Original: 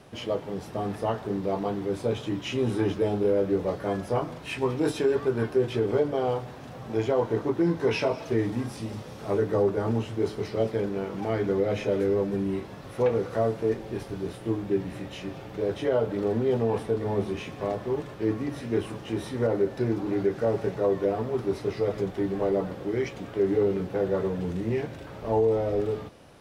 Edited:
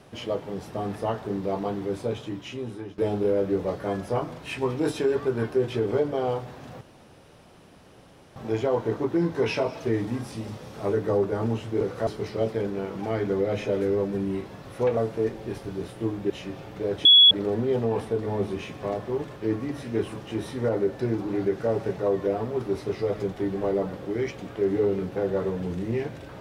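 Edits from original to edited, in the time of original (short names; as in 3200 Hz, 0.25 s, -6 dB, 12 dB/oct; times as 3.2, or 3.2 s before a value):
1.86–2.98 fade out, to -17 dB
6.81 insert room tone 1.55 s
13.16–13.42 move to 10.26
14.75–15.08 cut
15.83–16.09 bleep 3370 Hz -10 dBFS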